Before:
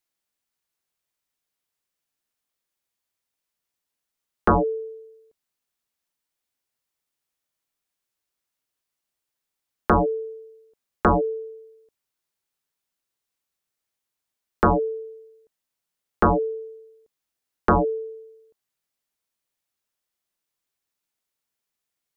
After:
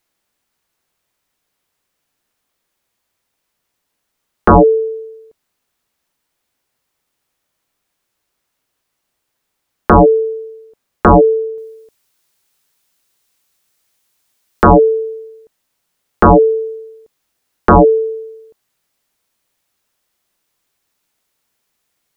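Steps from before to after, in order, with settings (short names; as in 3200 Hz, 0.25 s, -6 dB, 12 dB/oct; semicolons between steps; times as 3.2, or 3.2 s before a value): high shelf 2600 Hz -6 dB, from 11.58 s +4 dB, from 14.67 s -2.5 dB; maximiser +16.5 dB; gain -1 dB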